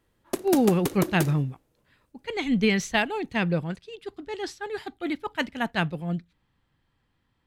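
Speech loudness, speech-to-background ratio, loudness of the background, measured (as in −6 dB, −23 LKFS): −27.0 LKFS, 5.5 dB, −32.5 LKFS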